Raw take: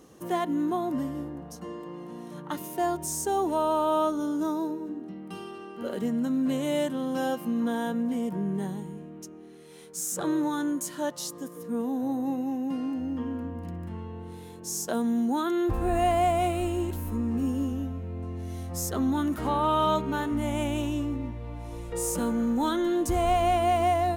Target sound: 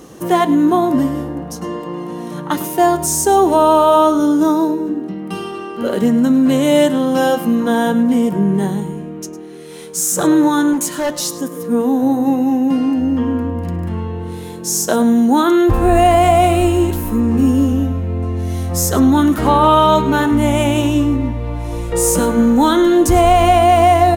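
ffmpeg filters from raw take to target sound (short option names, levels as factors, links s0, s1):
-filter_complex "[0:a]flanger=delay=5.7:depth=2.9:regen=-82:speed=0.41:shape=triangular,asettb=1/sr,asplit=3[s0][s1][s2];[s0]atrim=end=10.734[s3];[s1]atrim=start=10.73:end=11.42,asetpts=PTS-STARTPTS,afade=t=in:d=0.004:c=qsin,afade=t=out:st=0.686:d=0.004:c=qsin,asoftclip=type=hard:threshold=0.0224[s4];[s2]atrim=start=11.416[s5];[s3][s4]acrossfade=d=0.004:c1=hsin:c2=qsin[s6];[s6][s5]acrossfade=d=0.004:c1=qsin:c2=hsin,aecho=1:1:105:0.158,alimiter=level_in=10:limit=0.891:release=50:level=0:latency=1,volume=0.891"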